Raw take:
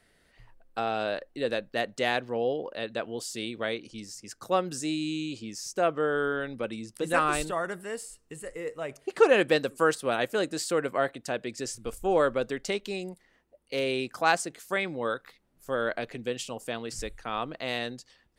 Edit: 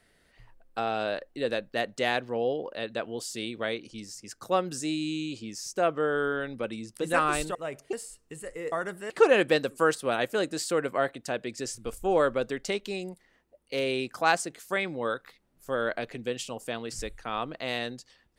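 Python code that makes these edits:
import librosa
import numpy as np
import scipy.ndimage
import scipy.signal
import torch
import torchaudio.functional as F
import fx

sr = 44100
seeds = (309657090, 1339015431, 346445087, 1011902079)

y = fx.edit(x, sr, fx.swap(start_s=7.55, length_s=0.38, other_s=8.72, other_length_s=0.38), tone=tone)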